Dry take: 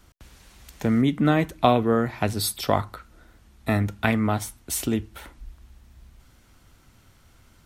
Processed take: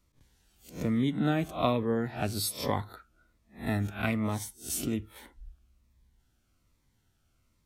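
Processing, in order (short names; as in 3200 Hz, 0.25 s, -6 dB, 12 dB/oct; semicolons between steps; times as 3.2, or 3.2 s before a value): spectral swells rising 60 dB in 0.36 s; spectral noise reduction 10 dB; cascading phaser falling 1.2 Hz; gain -7 dB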